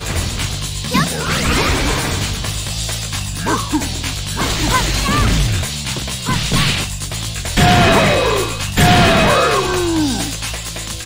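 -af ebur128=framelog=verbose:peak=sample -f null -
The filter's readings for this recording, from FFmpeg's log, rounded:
Integrated loudness:
  I:         -16.0 LUFS
  Threshold: -26.0 LUFS
Loudness range:
  LRA:         5.3 LU
  Threshold: -35.9 LUFS
  LRA low:   -18.5 LUFS
  LRA high:  -13.2 LUFS
Sample peak:
  Peak:       -3.3 dBFS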